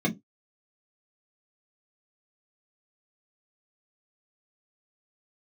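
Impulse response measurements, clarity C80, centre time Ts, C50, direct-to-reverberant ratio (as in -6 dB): 30.0 dB, 10 ms, 20.5 dB, -3.5 dB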